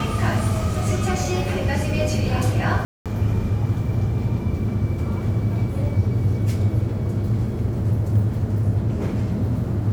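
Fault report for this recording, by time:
2.85–3.06 gap 0.207 s

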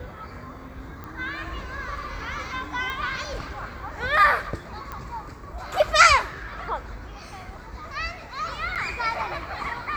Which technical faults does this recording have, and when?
1.04 pop -23 dBFS
2.9 pop
4.92 pop -20 dBFS
8.75–8.76 gap 7.5 ms

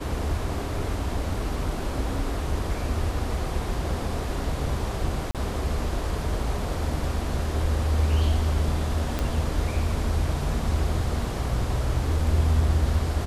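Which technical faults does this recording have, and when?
5.31–5.35 gap 37 ms
9.19 pop -13 dBFS

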